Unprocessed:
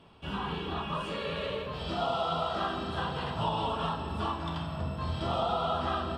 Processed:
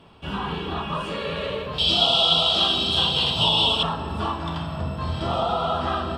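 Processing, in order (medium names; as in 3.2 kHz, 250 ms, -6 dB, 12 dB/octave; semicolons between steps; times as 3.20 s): 1.78–3.83 s: resonant high shelf 2.4 kHz +11 dB, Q 3; trim +6 dB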